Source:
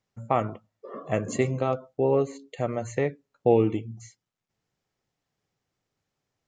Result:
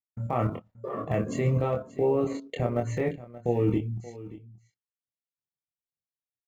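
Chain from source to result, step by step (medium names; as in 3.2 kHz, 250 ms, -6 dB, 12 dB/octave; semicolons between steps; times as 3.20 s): block-companded coder 7-bit; expander -50 dBFS; tone controls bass +4 dB, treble -10 dB; level held to a coarse grid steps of 14 dB; peak limiter -24.5 dBFS, peak gain reduction 9.5 dB; doubling 25 ms -3.5 dB; on a send: delay 579 ms -17 dB; on the sum: trim +7.5 dB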